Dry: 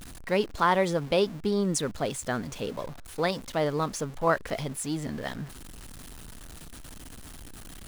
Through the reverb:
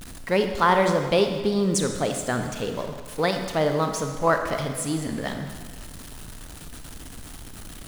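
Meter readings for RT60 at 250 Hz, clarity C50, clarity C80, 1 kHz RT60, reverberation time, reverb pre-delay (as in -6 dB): 1.6 s, 6.5 dB, 8.0 dB, 1.6 s, 1.6 s, 30 ms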